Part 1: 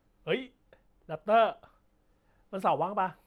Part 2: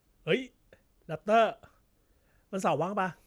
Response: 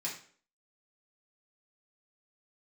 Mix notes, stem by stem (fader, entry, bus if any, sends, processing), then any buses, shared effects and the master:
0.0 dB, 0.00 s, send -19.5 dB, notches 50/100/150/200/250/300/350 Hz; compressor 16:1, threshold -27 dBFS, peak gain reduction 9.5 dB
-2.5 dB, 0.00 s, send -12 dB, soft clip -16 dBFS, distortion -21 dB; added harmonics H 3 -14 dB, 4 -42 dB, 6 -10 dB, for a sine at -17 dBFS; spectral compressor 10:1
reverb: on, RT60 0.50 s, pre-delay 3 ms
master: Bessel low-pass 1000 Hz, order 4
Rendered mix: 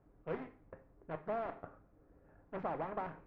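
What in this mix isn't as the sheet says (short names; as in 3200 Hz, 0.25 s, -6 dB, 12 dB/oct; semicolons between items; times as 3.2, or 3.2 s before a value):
stem 1 0.0 dB -> -8.5 dB; stem 2: send -12 dB -> -4.5 dB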